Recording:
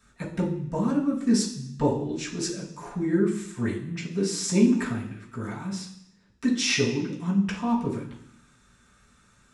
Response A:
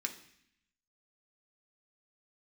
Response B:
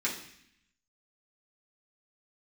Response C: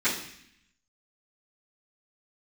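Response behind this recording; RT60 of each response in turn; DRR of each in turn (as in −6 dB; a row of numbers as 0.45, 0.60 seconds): B; 0.65, 0.65, 0.65 seconds; 3.0, −6.5, −16.5 decibels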